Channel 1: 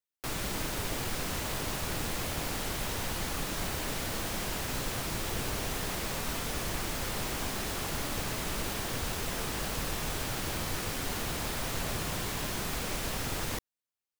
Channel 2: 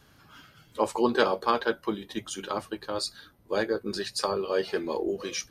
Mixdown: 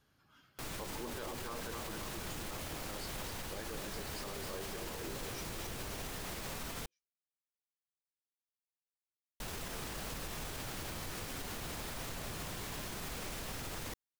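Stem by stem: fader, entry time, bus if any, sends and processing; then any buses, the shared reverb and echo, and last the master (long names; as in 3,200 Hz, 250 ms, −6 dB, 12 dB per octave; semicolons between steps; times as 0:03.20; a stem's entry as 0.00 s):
−5.5 dB, 0.35 s, muted 0:06.86–0:09.40, no send, no echo send, no processing
−14.5 dB, 0.00 s, no send, echo send −6.5 dB, no processing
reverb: not used
echo: repeating echo 263 ms, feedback 46%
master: brickwall limiter −32.5 dBFS, peak gain reduction 10.5 dB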